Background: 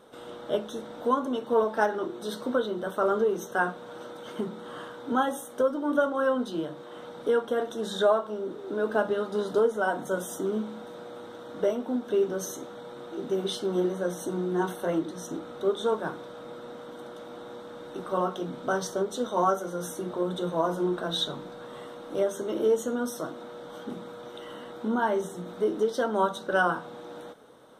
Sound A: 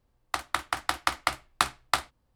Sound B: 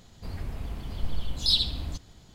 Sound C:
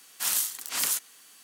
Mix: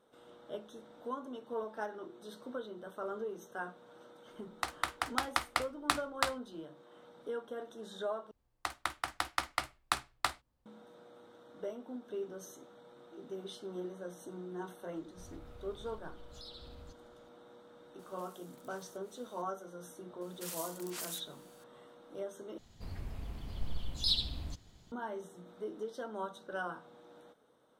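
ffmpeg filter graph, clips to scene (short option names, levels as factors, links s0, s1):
-filter_complex "[1:a]asplit=2[s0][s1];[2:a]asplit=2[s2][s3];[3:a]asplit=2[s4][s5];[0:a]volume=0.178[s6];[s2]acompressor=threshold=0.0316:ratio=6:attack=3.2:release=140:knee=1:detection=peak[s7];[s4]acompressor=threshold=0.00447:ratio=6:attack=3.2:release=140:knee=1:detection=peak[s8];[s5]alimiter=limit=0.158:level=0:latency=1:release=282[s9];[s6]asplit=3[s10][s11][s12];[s10]atrim=end=8.314[s13];[s1]atrim=end=2.35,asetpts=PTS-STARTPTS,volume=0.422[s14];[s11]atrim=start=10.656:end=22.584[s15];[s3]atrim=end=2.34,asetpts=PTS-STARTPTS,volume=0.422[s16];[s12]atrim=start=24.916[s17];[s0]atrim=end=2.35,asetpts=PTS-STARTPTS,volume=0.501,afade=t=in:d=0.004:c=hsin,afade=t=out:st=2.346:d=0.004:c=hsin,adelay=189189S[s18];[s7]atrim=end=2.34,asetpts=PTS-STARTPTS,volume=0.141,afade=t=in:d=0.004:c=hsin,afade=t=out:st=2.336:d=0.004:c=hsin,adelay=14950[s19];[s8]atrim=end=1.43,asetpts=PTS-STARTPTS,volume=0.188,afade=t=in:d=0.004:c=hsin,afade=t=out:st=1.426:d=0.004:c=hsin,adelay=17990[s20];[s9]atrim=end=1.43,asetpts=PTS-STARTPTS,volume=0.251,afade=t=in:d=0.004:c=hsin,afade=t=out:st=1.426:d=0.004:c=hsin,adelay=20210[s21];[s13][s14]acrossfade=d=0.004:c1=hsin:c2=hsin[s22];[s22][s15]acrossfade=d=0.004:c1=hsin:c2=hsin[s23];[s23][s16]acrossfade=d=0.004:c1=hsin:c2=hsin[s24];[s24][s17]acrossfade=d=0.004:c1=hsin:c2=hsin[s25];[s25][s18][s19][s20][s21]amix=inputs=5:normalize=0"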